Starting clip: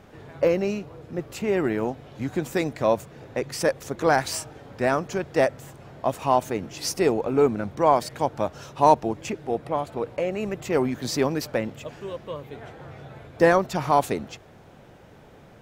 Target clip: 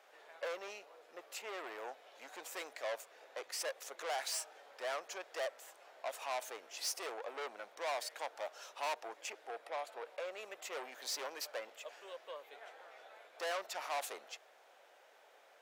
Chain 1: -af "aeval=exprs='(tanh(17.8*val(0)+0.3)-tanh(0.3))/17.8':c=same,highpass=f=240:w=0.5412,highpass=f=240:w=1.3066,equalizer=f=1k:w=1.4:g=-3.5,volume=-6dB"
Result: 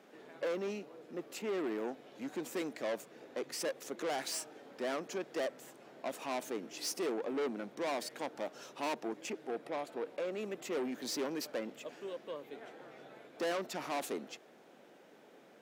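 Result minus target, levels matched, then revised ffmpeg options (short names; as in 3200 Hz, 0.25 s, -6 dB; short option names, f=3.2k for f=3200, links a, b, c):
250 Hz band +17.0 dB
-af "aeval=exprs='(tanh(17.8*val(0)+0.3)-tanh(0.3))/17.8':c=same,highpass=f=590:w=0.5412,highpass=f=590:w=1.3066,equalizer=f=1k:w=1.4:g=-3.5,volume=-6dB"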